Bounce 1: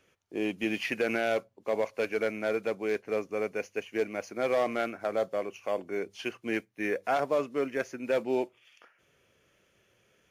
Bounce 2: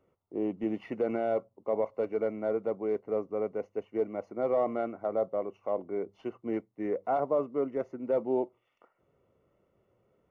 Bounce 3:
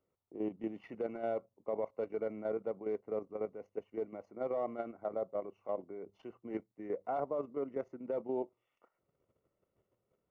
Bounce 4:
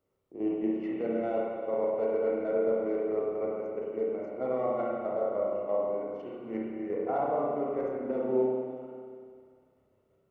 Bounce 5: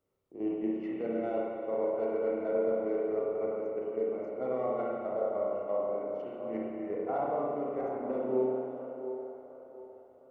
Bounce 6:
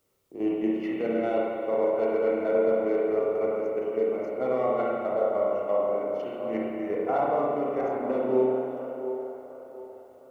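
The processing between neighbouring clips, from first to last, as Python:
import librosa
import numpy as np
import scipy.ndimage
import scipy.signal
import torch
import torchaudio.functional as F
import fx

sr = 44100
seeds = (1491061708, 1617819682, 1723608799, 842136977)

y1 = scipy.signal.savgol_filter(x, 65, 4, mode='constant')
y2 = fx.level_steps(y1, sr, step_db=10)
y2 = y2 * librosa.db_to_amplitude(-4.0)
y3 = fx.rev_spring(y2, sr, rt60_s=2.1, pass_ms=(31, 49), chirp_ms=35, drr_db=-4.5)
y3 = y3 * librosa.db_to_amplitude(2.0)
y4 = fx.echo_wet_bandpass(y3, sr, ms=708, feedback_pct=38, hz=720.0, wet_db=-8)
y4 = y4 * librosa.db_to_amplitude(-2.5)
y5 = fx.high_shelf(y4, sr, hz=2100.0, db=11.0)
y5 = y5 * librosa.db_to_amplitude(5.5)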